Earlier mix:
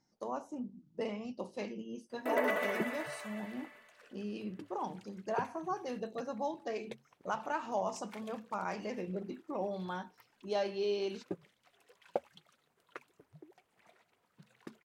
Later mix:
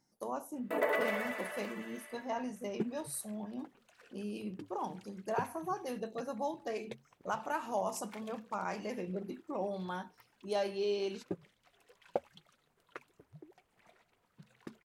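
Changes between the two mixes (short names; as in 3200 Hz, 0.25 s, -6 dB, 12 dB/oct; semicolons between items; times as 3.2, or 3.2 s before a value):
speech: remove LPF 6700 Hz 24 dB/oct; first sound: entry -1.55 s; second sound: remove HPF 150 Hz 6 dB/oct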